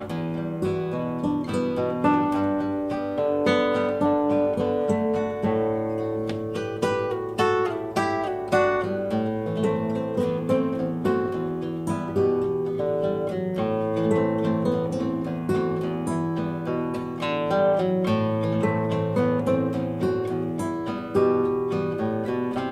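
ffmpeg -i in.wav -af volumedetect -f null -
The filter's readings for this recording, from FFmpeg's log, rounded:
mean_volume: -24.2 dB
max_volume: -8.5 dB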